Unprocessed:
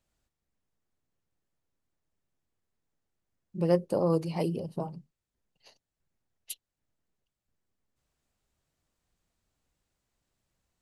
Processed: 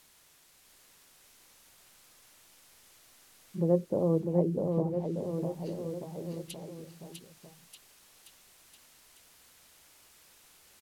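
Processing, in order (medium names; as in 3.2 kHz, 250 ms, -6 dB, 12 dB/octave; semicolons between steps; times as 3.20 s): word length cut 10-bit, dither triangular; low-pass that closes with the level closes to 610 Hz, closed at -28.5 dBFS; bouncing-ball echo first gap 650 ms, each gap 0.9×, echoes 5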